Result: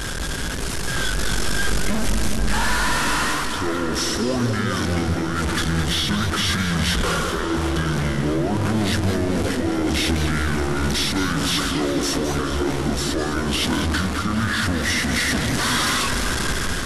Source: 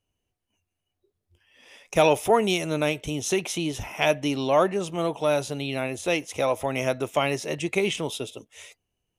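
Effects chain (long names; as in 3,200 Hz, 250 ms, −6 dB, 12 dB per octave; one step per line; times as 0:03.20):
converter with a step at zero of −24 dBFS
dynamic equaliser 340 Hz, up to −4 dB, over −32 dBFS, Q 0.98
reversed playback
downward compressor, threshold −25 dBFS, peak gain reduction 11 dB
reversed playback
brickwall limiter −23.5 dBFS, peak gain reduction 7 dB
automatic gain control gain up to 4 dB
change of speed 0.545×
echo whose low-pass opens from repeat to repeat 201 ms, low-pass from 400 Hz, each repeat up 1 octave, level −6 dB
feedback echo with a swinging delay time 209 ms, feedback 49%, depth 150 cents, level −9.5 dB
level +3.5 dB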